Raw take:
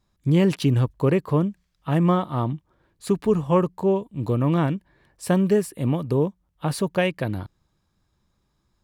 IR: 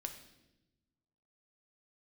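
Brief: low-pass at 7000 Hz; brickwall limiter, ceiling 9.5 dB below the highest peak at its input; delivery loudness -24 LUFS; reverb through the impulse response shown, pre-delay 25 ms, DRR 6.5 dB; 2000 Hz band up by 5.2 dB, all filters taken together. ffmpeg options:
-filter_complex "[0:a]lowpass=7k,equalizer=f=2k:t=o:g=6.5,alimiter=limit=-17dB:level=0:latency=1,asplit=2[a][b];[1:a]atrim=start_sample=2205,adelay=25[c];[b][c]afir=irnorm=-1:irlink=0,volume=-4dB[d];[a][d]amix=inputs=2:normalize=0,volume=2dB"

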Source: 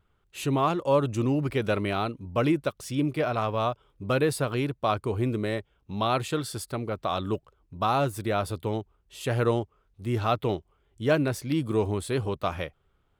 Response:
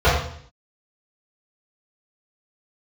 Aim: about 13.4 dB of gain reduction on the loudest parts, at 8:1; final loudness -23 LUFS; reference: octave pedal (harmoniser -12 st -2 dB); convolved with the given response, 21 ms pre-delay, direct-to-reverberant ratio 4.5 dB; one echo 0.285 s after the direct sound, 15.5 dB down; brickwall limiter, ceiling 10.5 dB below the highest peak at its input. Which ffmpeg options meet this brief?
-filter_complex "[0:a]acompressor=threshold=-33dB:ratio=8,alimiter=level_in=8.5dB:limit=-24dB:level=0:latency=1,volume=-8.5dB,aecho=1:1:285:0.168,asplit=2[a][b];[1:a]atrim=start_sample=2205,adelay=21[c];[b][c]afir=irnorm=-1:irlink=0,volume=-28.5dB[d];[a][d]amix=inputs=2:normalize=0,asplit=2[e][f];[f]asetrate=22050,aresample=44100,atempo=2,volume=-2dB[g];[e][g]amix=inputs=2:normalize=0,volume=15dB"

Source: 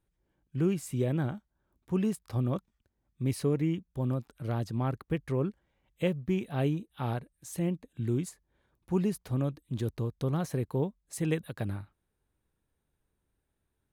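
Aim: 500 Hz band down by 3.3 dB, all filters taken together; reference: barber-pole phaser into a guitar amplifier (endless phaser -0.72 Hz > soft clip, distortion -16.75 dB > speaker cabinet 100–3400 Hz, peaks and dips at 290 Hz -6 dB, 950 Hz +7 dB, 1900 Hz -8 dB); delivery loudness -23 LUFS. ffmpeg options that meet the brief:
-filter_complex "[0:a]equalizer=f=500:t=o:g=-3.5,asplit=2[a][b];[b]afreqshift=-0.72[c];[a][c]amix=inputs=2:normalize=1,asoftclip=threshold=-27.5dB,highpass=100,equalizer=f=290:t=q:w=4:g=-6,equalizer=f=950:t=q:w=4:g=7,equalizer=f=1.9k:t=q:w=4:g=-8,lowpass=f=3.4k:w=0.5412,lowpass=f=3.4k:w=1.3066,volume=16dB"

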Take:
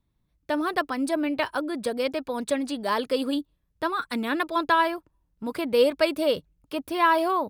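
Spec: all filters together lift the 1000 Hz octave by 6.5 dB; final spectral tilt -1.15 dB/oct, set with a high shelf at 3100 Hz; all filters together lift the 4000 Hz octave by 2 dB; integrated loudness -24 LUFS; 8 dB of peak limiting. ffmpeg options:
-af "equalizer=f=1k:t=o:g=7.5,highshelf=f=3.1k:g=-6,equalizer=f=4k:t=o:g=6.5,volume=1dB,alimiter=limit=-12dB:level=0:latency=1"

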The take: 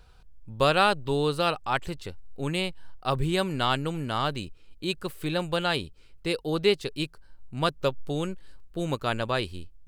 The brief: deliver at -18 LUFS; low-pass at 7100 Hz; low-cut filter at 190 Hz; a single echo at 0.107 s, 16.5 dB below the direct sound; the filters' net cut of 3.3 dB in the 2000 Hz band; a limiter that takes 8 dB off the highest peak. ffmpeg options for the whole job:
-af "highpass=190,lowpass=7.1k,equalizer=f=2k:t=o:g=-5,alimiter=limit=-16.5dB:level=0:latency=1,aecho=1:1:107:0.15,volume=13.5dB"

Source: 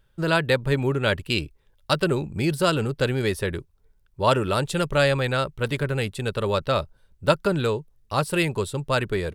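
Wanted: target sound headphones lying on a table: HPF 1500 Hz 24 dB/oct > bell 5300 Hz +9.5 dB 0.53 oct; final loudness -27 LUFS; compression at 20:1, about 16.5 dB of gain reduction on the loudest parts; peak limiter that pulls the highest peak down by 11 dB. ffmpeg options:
-af "acompressor=threshold=-30dB:ratio=20,alimiter=level_in=3dB:limit=-24dB:level=0:latency=1,volume=-3dB,highpass=f=1.5k:w=0.5412,highpass=f=1.5k:w=1.3066,equalizer=f=5.3k:t=o:w=0.53:g=9.5,volume=17.5dB"

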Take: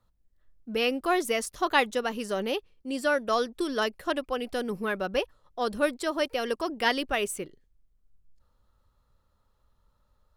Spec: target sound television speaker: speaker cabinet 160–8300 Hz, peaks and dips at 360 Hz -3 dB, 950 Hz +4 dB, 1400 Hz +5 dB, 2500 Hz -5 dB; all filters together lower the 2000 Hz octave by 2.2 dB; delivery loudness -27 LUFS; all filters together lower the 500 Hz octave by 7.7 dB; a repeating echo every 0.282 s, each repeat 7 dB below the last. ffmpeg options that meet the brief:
-af "highpass=f=160:w=0.5412,highpass=f=160:w=1.3066,equalizer=f=360:t=q:w=4:g=-3,equalizer=f=950:t=q:w=4:g=4,equalizer=f=1.4k:t=q:w=4:g=5,equalizer=f=2.5k:t=q:w=4:g=-5,lowpass=f=8.3k:w=0.5412,lowpass=f=8.3k:w=1.3066,equalizer=f=500:t=o:g=-9,equalizer=f=2k:t=o:g=-5,aecho=1:1:282|564|846|1128|1410:0.447|0.201|0.0905|0.0407|0.0183,volume=4.5dB"

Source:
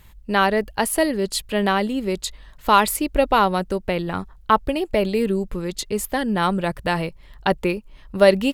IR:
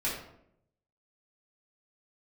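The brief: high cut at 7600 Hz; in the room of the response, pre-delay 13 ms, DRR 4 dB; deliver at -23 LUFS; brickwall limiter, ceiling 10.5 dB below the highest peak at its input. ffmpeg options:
-filter_complex "[0:a]lowpass=7.6k,alimiter=limit=-12dB:level=0:latency=1,asplit=2[a][b];[1:a]atrim=start_sample=2205,adelay=13[c];[b][c]afir=irnorm=-1:irlink=0,volume=-10.5dB[d];[a][d]amix=inputs=2:normalize=0"

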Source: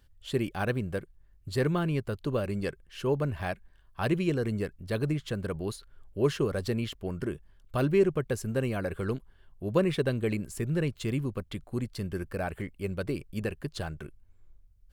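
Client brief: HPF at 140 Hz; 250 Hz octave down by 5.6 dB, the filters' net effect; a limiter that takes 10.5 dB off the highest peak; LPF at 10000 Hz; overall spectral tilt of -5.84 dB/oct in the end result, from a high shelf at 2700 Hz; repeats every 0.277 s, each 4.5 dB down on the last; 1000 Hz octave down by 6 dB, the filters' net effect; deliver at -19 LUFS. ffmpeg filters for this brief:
-af "highpass=140,lowpass=10k,equalizer=f=250:t=o:g=-7,equalizer=f=1k:t=o:g=-7.5,highshelf=f=2.7k:g=-4,alimiter=level_in=4dB:limit=-24dB:level=0:latency=1,volume=-4dB,aecho=1:1:277|554|831|1108|1385|1662|1939|2216|2493:0.596|0.357|0.214|0.129|0.0772|0.0463|0.0278|0.0167|0.01,volume=18.5dB"

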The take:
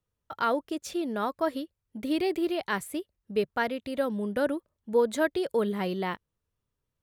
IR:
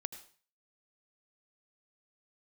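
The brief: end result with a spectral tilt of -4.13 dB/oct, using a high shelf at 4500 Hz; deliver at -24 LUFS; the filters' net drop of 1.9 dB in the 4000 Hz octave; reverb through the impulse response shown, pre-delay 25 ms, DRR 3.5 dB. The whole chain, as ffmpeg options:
-filter_complex "[0:a]equalizer=f=4k:t=o:g=-5,highshelf=f=4.5k:g=5,asplit=2[a][b];[1:a]atrim=start_sample=2205,adelay=25[c];[b][c]afir=irnorm=-1:irlink=0,volume=-2dB[d];[a][d]amix=inputs=2:normalize=0,volume=4dB"

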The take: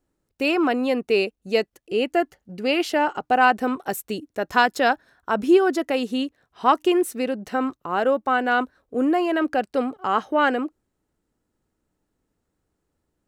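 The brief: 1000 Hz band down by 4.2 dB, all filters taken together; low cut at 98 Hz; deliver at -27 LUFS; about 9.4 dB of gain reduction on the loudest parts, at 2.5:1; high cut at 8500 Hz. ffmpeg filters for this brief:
-af "highpass=98,lowpass=8.5k,equalizer=f=1k:t=o:g=-6,acompressor=threshold=-26dB:ratio=2.5,volume=2.5dB"

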